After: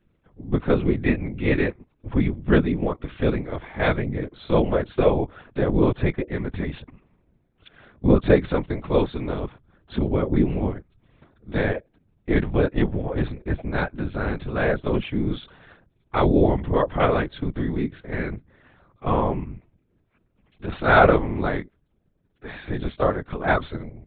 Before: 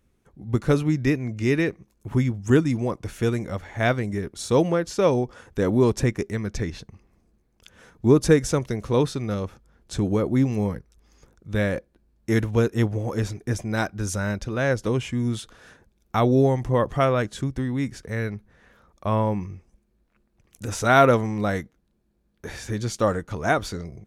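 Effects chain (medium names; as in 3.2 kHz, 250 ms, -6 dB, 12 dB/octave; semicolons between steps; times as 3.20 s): LPC vocoder at 8 kHz pitch kept; whisper effect; trim +1 dB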